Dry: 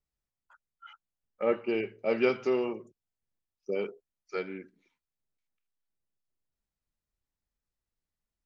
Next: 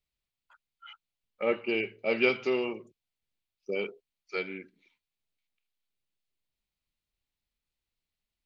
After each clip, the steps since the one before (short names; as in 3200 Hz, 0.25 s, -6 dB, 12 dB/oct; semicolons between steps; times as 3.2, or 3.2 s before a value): band shelf 3100 Hz +8.5 dB 1.3 oct; gain -1 dB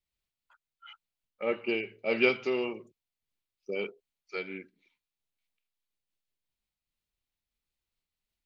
noise-modulated level, depth 55%; gain +1 dB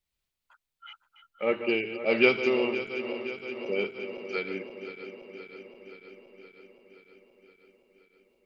regenerating reverse delay 0.261 s, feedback 81%, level -11 dB; gain +3.5 dB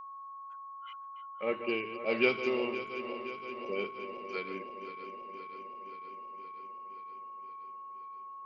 whine 1100 Hz -37 dBFS; gain -6 dB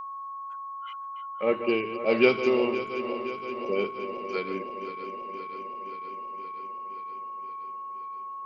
dynamic EQ 2400 Hz, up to -5 dB, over -50 dBFS, Q 0.76; gain +8.5 dB